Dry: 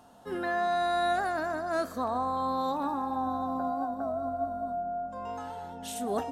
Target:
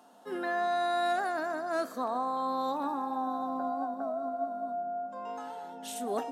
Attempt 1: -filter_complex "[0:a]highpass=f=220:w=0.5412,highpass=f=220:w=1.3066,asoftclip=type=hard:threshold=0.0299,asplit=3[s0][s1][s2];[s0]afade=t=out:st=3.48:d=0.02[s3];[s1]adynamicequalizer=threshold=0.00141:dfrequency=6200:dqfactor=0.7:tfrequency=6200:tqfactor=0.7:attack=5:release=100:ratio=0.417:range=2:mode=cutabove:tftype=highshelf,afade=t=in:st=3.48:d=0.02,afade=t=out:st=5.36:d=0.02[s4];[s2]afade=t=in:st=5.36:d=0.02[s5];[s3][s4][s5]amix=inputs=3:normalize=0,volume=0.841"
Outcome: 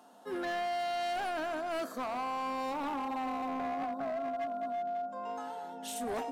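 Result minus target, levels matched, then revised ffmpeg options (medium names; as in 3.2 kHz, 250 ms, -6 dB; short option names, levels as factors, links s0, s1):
hard clipper: distortion +29 dB
-filter_complex "[0:a]highpass=f=220:w=0.5412,highpass=f=220:w=1.3066,asoftclip=type=hard:threshold=0.1,asplit=3[s0][s1][s2];[s0]afade=t=out:st=3.48:d=0.02[s3];[s1]adynamicequalizer=threshold=0.00141:dfrequency=6200:dqfactor=0.7:tfrequency=6200:tqfactor=0.7:attack=5:release=100:ratio=0.417:range=2:mode=cutabove:tftype=highshelf,afade=t=in:st=3.48:d=0.02,afade=t=out:st=5.36:d=0.02[s4];[s2]afade=t=in:st=5.36:d=0.02[s5];[s3][s4][s5]amix=inputs=3:normalize=0,volume=0.841"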